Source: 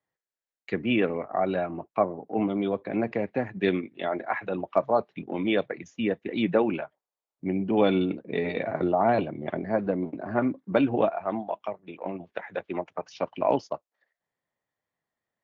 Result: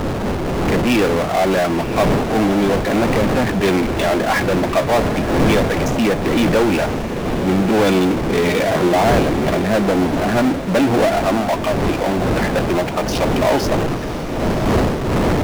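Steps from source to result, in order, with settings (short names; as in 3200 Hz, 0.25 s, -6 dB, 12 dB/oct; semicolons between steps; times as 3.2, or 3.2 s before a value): wind noise 400 Hz -34 dBFS; power-law curve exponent 0.35; diffused feedback echo 1.03 s, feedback 48%, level -11 dB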